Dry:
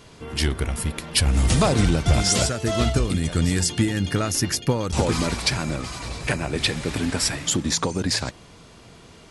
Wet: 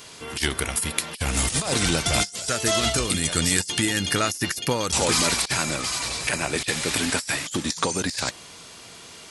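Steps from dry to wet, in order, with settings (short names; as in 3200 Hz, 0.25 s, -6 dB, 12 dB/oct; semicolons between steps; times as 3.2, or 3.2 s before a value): tilt +3 dB/oct; negative-ratio compressor -23 dBFS, ratio -0.5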